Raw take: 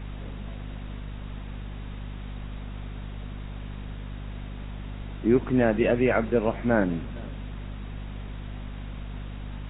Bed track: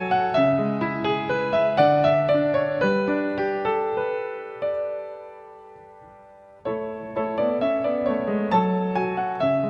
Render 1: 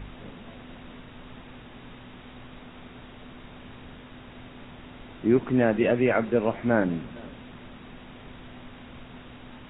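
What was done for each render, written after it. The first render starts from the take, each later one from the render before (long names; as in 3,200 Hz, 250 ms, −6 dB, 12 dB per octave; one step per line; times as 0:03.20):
hum removal 50 Hz, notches 4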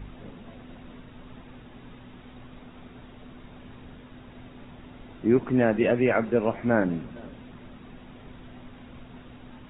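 broadband denoise 6 dB, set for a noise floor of −46 dBFS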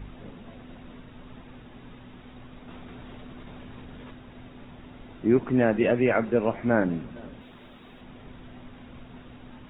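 0:02.68–0:04.14: envelope flattener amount 100%
0:07.41–0:08.01: bass and treble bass −7 dB, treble +12 dB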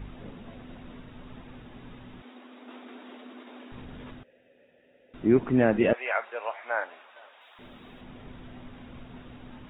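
0:02.22–0:03.72: linear-phase brick-wall high-pass 220 Hz
0:04.23–0:05.14: formant filter e
0:05.93–0:07.59: high-pass filter 710 Hz 24 dB per octave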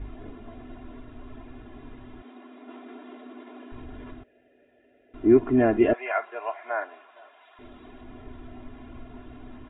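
low-pass filter 1,400 Hz 6 dB per octave
comb filter 2.9 ms, depth 96%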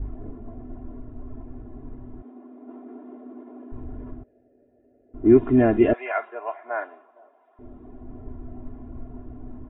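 low-pass that shuts in the quiet parts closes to 650 Hz, open at −18 dBFS
low-shelf EQ 260 Hz +7 dB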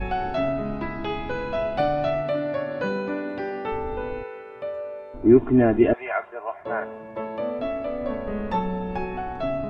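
mix in bed track −5.5 dB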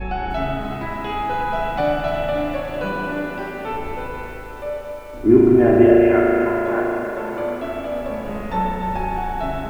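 spring reverb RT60 4 s, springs 37 ms, chirp 60 ms, DRR −4.5 dB
feedback echo at a low word length 298 ms, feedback 80%, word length 7 bits, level −13 dB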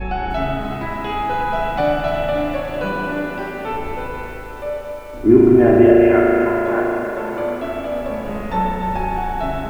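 level +2 dB
brickwall limiter −1 dBFS, peak gain reduction 1.5 dB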